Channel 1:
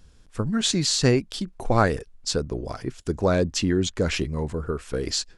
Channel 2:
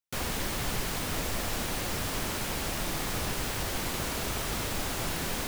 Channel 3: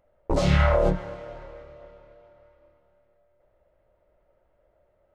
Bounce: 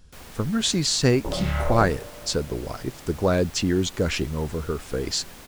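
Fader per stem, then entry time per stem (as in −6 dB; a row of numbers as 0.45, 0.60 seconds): 0.0, −11.5, −6.0 decibels; 0.00, 0.00, 0.95 seconds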